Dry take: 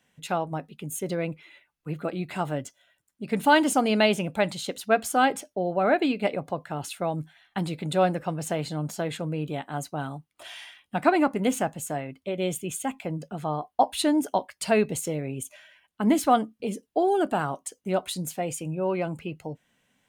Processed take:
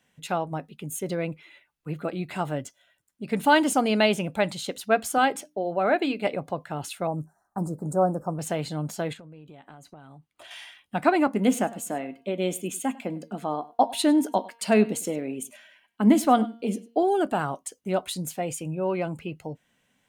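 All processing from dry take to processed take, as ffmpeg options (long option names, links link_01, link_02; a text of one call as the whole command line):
ffmpeg -i in.wav -filter_complex "[0:a]asettb=1/sr,asplit=3[link_01][link_02][link_03];[link_01]atrim=end=5.184[link_04];[link_02]atrim=start=5.18:end=6.27,asetpts=PTS-STARTPTS,afade=type=in:duration=0.004:curve=qsin,afade=type=out:start_time=1.086:duration=0.004:curve=qsin,highpass=frequency=190:poles=1,bandreject=frequency=60:width_type=h:width=6,bandreject=frequency=120:width_type=h:width=6,bandreject=frequency=180:width_type=h:width=6,bandreject=frequency=240:width_type=h:width=6,bandreject=frequency=300:width_type=h:width=6[link_05];[link_03]atrim=start=6.266[link_06];[link_04][link_05]acrossfade=duration=0.004:curve1=hsin:curve2=qsin[link_07];[link_07][link_06]acrossfade=duration=0.004:curve1=qsin:curve2=hsin,asettb=1/sr,asplit=3[link_08][link_09][link_10];[link_08]atrim=end=7.074[link_11];[link_09]atrim=start=7.07:end=8.39,asetpts=PTS-STARTPTS,afade=type=in:duration=0.004:curve=qsin,afade=type=out:start_time=1.316:duration=0.004:curve=qsin,asuperstop=centerf=2800:order=8:qfactor=0.59,bandreject=frequency=197.8:width_type=h:width=4,bandreject=frequency=395.6:width_type=h:width=4,bandreject=frequency=593.4:width_type=h:width=4[link_12];[link_10]atrim=start=8.386[link_13];[link_11][link_12]acrossfade=duration=0.004:curve1=hsin:curve2=qsin[link_14];[link_14][link_13]acrossfade=duration=0.004:curve1=qsin:curve2=hsin,asettb=1/sr,asplit=3[link_15][link_16][link_17];[link_15]atrim=end=9.134[link_18];[link_16]atrim=start=9.13:end=10.51,asetpts=PTS-STARTPTS,afade=type=in:duration=0.004:curve=qsin,afade=type=out:start_time=1.376:duration=0.004:curve=qsin,highshelf=frequency=7600:gain=-7.5,bandreject=frequency=5400:width=20,acompressor=threshold=-42dB:ratio=16:attack=3.2:release=140:knee=1:detection=peak[link_19];[link_17]atrim=start=10.506[link_20];[link_18][link_19]acrossfade=duration=0.004:curve1=hsin:curve2=qsin[link_21];[link_21][link_20]acrossfade=duration=0.004:curve1=qsin:curve2=hsin,asettb=1/sr,asplit=3[link_22][link_23][link_24];[link_22]atrim=end=11.274[link_25];[link_23]atrim=start=11.27:end=17.03,asetpts=PTS-STARTPTS,afade=type=in:duration=0.004:curve=qsin,afade=type=out:start_time=5.756:duration=0.004:curve=qsin,lowshelf=frequency=170:width_type=q:width=3:gain=-6.5,bandreject=frequency=232.3:width_type=h:width=4,bandreject=frequency=464.6:width_type=h:width=4,bandreject=frequency=696.9:width_type=h:width=4,bandreject=frequency=929.2:width_type=h:width=4,bandreject=frequency=1161.5:width_type=h:width=4,bandreject=frequency=1393.8:width_type=h:width=4,bandreject=frequency=1626.1:width_type=h:width=4,bandreject=frequency=1858.4:width_type=h:width=4,bandreject=frequency=2090.7:width_type=h:width=4,bandreject=frequency=2323:width_type=h:width=4,bandreject=frequency=2555.3:width_type=h:width=4,bandreject=frequency=2787.6:width_type=h:width=4,bandreject=frequency=3019.9:width_type=h:width=4,bandreject=frequency=3252.2:width_type=h:width=4,bandreject=frequency=3484.5:width_type=h:width=4,bandreject=frequency=3716.8:width_type=h:width=4,bandreject=frequency=3949.1:width_type=h:width=4,bandreject=frequency=4181.4:width_type=h:width=4,bandreject=frequency=4413.7:width_type=h:width=4,bandreject=frequency=4646:width_type=h:width=4,aecho=1:1:101:0.0944,atrim=end_sample=254016[link_26];[link_24]atrim=start=17.026[link_27];[link_25][link_26]acrossfade=duration=0.004:curve1=hsin:curve2=qsin[link_28];[link_28][link_27]acrossfade=duration=0.004:curve1=qsin:curve2=hsin" out.wav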